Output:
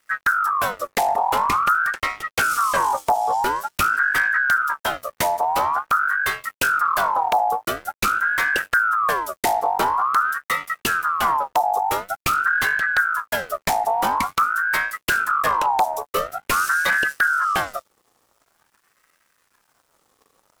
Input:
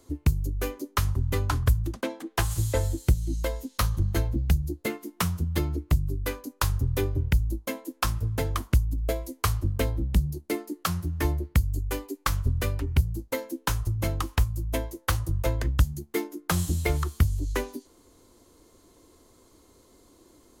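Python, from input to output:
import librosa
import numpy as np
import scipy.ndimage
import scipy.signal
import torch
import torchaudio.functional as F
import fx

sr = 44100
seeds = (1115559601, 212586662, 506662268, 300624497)

y = fx.leveller(x, sr, passes=3)
y = fx.quant_dither(y, sr, seeds[0], bits=10, dither='none')
y = fx.ring_lfo(y, sr, carrier_hz=1200.0, swing_pct=35, hz=0.47)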